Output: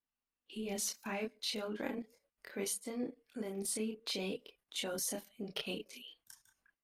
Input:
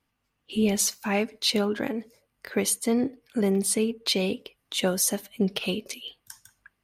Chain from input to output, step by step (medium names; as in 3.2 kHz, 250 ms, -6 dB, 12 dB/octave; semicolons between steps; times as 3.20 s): level held to a coarse grid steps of 15 dB; peaking EQ 110 Hz -10 dB 0.98 oct; chorus voices 6, 0.37 Hz, delay 28 ms, depth 5 ms; trim -3.5 dB